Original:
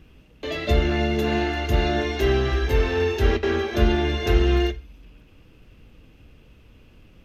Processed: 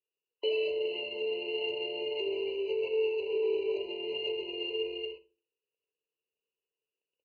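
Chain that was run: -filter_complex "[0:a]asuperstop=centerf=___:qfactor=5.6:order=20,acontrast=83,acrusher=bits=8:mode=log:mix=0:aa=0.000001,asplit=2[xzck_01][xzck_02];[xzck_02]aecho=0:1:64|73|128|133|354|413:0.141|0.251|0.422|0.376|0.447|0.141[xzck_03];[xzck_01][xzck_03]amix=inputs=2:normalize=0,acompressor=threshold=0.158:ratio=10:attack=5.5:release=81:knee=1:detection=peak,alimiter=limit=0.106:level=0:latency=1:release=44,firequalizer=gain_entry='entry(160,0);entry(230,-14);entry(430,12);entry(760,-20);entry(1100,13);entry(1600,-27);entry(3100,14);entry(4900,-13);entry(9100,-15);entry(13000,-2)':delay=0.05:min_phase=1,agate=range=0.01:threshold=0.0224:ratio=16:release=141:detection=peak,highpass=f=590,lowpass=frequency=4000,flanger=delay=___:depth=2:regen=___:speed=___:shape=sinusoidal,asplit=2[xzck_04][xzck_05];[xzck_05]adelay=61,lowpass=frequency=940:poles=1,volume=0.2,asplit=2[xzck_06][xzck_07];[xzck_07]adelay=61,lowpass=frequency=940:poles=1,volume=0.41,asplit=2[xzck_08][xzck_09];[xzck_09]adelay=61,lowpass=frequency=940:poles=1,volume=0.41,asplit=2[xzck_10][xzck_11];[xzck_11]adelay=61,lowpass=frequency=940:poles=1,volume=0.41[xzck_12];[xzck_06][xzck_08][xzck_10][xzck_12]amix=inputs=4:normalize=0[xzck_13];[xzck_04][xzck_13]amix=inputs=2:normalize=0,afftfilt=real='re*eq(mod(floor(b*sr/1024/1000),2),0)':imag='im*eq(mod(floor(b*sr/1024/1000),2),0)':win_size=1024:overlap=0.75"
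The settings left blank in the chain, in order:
1700, 8.2, -78, 0.47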